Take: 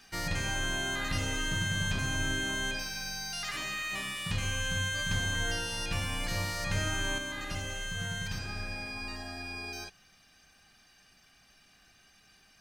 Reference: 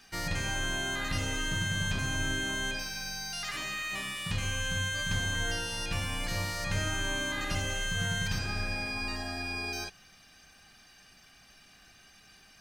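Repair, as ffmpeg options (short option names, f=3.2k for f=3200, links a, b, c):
-af "asetnsamples=n=441:p=0,asendcmd='7.18 volume volume 4.5dB',volume=0dB"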